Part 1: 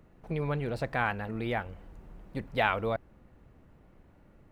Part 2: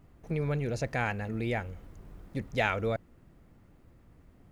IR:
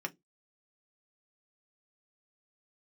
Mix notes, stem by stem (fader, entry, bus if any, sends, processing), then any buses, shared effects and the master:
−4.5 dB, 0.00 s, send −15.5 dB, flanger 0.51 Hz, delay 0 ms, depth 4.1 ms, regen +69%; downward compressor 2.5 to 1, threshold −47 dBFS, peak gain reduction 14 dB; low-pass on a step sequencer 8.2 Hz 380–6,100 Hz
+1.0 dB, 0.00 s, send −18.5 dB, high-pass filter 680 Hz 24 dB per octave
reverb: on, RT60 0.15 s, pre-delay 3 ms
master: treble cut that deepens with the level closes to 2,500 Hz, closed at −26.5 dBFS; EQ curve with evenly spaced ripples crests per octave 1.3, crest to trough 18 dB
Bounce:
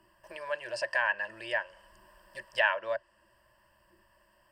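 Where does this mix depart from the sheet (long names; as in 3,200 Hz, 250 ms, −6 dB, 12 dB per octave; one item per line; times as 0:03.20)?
stem 1 −4.5 dB → −16.0 dB
stem 2: polarity flipped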